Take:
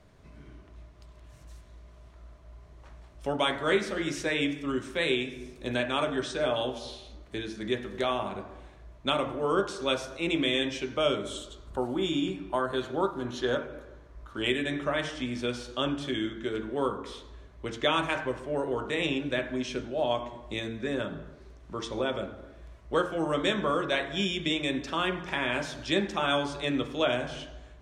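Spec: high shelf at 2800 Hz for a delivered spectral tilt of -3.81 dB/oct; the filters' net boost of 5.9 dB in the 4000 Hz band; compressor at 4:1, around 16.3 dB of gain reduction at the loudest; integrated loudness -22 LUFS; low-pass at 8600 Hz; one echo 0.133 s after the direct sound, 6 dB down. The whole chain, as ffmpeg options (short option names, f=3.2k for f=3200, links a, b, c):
-af "lowpass=8.6k,highshelf=f=2.8k:g=6,equalizer=f=4k:t=o:g=3,acompressor=threshold=-40dB:ratio=4,aecho=1:1:133:0.501,volume=18.5dB"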